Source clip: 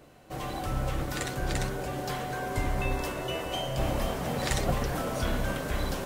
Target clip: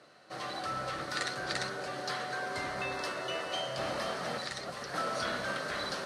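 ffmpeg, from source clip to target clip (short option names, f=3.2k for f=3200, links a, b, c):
-filter_complex "[0:a]highpass=190,equalizer=f=270:t=q:w=4:g=-4,equalizer=f=620:t=q:w=4:g=4,equalizer=f=1.3k:t=q:w=4:g=10,equalizer=f=1.8k:t=q:w=4:g=7,equalizer=f=4.3k:t=q:w=4:g=9,equalizer=f=7.3k:t=q:w=4:g=-9,lowpass=f=7.9k:w=0.5412,lowpass=f=7.9k:w=1.3066,asettb=1/sr,asplit=3[a][b][c];[a]atrim=end=4.374[d];[b]atrim=start=4.37:end=4.94,asetpts=PTS-STARTPTS,afade=t=in:d=0.004:c=qsin,afade=t=out:st=0.566:d=0.004:c=qsin,acrossover=split=270|5400[e][f][g];[e]acompressor=threshold=-44dB:ratio=4[h];[f]acompressor=threshold=-34dB:ratio=4[i];[g]acompressor=threshold=-49dB:ratio=4[j];[h][i][j]amix=inputs=3:normalize=0[k];[c]atrim=start=4.936[l];[d][k]acrossfade=d=0.004:c1=hsin:c2=qsin[m];[m][l]acrossfade=d=0.004:c1=qsin:c2=hsin,aemphasis=mode=production:type=50kf,volume=-6dB"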